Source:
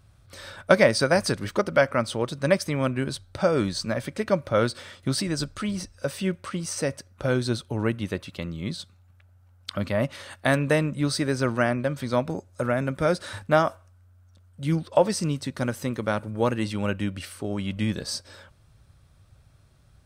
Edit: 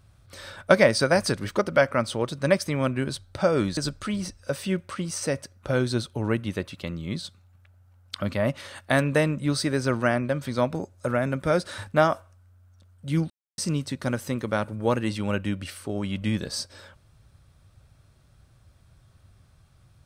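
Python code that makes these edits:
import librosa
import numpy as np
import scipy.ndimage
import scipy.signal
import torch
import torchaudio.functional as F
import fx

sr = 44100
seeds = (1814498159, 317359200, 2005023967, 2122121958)

y = fx.edit(x, sr, fx.cut(start_s=3.77, length_s=1.55),
    fx.silence(start_s=14.85, length_s=0.28), tone=tone)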